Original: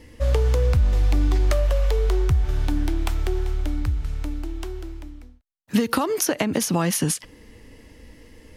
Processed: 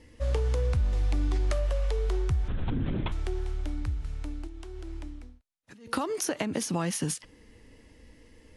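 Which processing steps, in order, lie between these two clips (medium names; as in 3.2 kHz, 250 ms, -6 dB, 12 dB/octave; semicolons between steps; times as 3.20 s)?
2.48–3.12 s: LPC vocoder at 8 kHz whisper; 4.47–5.88 s: compressor with a negative ratio -34 dBFS, ratio -1; trim -7.5 dB; AAC 64 kbps 24 kHz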